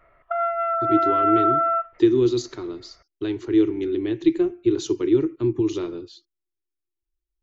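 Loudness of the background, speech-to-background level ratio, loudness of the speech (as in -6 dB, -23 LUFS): -21.5 LUFS, -1.5 dB, -23.0 LUFS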